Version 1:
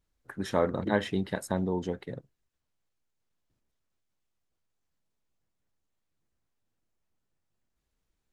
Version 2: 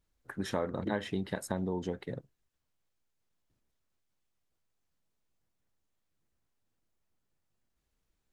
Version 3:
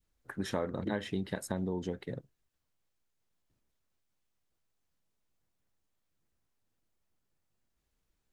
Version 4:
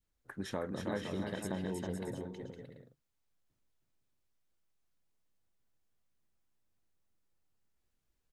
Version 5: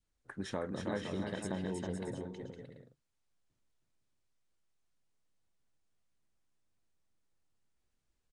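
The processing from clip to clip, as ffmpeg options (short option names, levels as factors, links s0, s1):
-af "acompressor=threshold=0.0316:ratio=3"
-af "adynamicequalizer=threshold=0.00398:dfrequency=920:dqfactor=0.92:tfrequency=920:tqfactor=0.92:attack=5:release=100:ratio=0.375:range=2.5:mode=cutabove:tftype=bell"
-af "aecho=1:1:320|512|627.2|696.3|737.8:0.631|0.398|0.251|0.158|0.1,volume=0.596"
-af "aresample=22050,aresample=44100"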